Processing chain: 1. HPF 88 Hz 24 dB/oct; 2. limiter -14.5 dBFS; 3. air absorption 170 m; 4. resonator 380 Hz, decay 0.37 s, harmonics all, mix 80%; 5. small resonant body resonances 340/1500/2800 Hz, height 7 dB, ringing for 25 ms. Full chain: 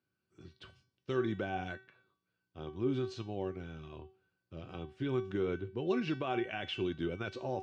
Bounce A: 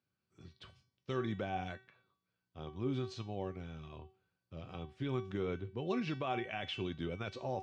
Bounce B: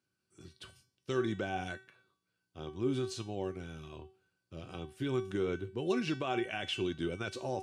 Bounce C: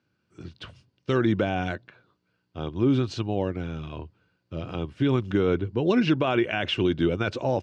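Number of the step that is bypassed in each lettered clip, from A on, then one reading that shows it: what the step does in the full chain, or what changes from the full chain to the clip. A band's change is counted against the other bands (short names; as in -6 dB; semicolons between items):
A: 5, 125 Hz band +3.0 dB; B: 3, 4 kHz band +3.5 dB; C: 4, 125 Hz band +2.5 dB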